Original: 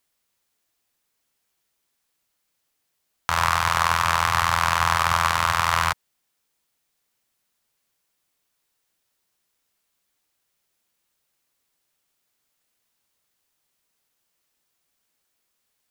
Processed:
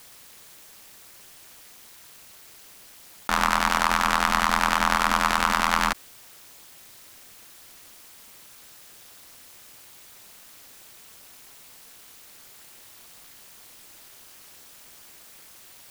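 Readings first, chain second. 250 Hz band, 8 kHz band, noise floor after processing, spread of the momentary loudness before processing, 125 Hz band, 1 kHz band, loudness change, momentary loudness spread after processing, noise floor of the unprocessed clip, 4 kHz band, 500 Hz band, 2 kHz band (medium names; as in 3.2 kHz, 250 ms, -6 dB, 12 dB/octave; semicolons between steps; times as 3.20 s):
+8.5 dB, -0.5 dB, -49 dBFS, 6 LU, -10.0 dB, -1.5 dB, -1.5 dB, 5 LU, -75 dBFS, -1.0 dB, +1.0 dB, -0.5 dB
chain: ring modulator 120 Hz; level flattener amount 50%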